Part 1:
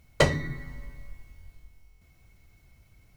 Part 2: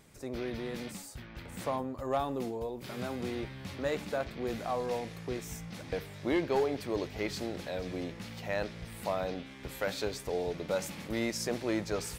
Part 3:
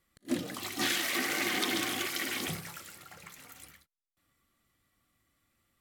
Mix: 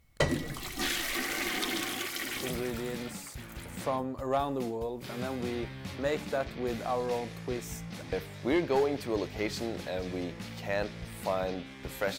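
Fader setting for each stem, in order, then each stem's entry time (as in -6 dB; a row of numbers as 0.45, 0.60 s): -6.5, +2.0, -1.5 dB; 0.00, 2.20, 0.00 s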